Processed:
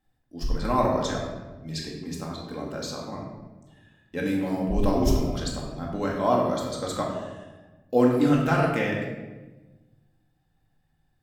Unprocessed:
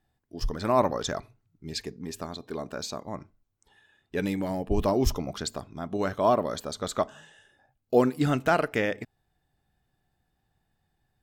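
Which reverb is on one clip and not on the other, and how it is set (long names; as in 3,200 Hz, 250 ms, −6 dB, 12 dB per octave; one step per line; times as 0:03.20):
rectangular room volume 700 cubic metres, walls mixed, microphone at 2.1 metres
level −3.5 dB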